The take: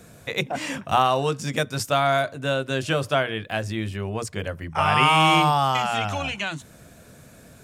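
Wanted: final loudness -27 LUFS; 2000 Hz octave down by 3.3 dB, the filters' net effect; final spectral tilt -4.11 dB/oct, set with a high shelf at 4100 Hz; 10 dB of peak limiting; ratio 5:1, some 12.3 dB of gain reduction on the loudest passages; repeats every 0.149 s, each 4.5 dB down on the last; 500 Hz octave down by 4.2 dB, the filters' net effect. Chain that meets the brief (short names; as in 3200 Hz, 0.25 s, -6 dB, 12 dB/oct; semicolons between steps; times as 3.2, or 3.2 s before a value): bell 500 Hz -5.5 dB; bell 2000 Hz -5.5 dB; high shelf 4100 Hz +4.5 dB; compressor 5:1, threshold -30 dBFS; limiter -27 dBFS; feedback echo 0.149 s, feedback 60%, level -4.5 dB; gain +8 dB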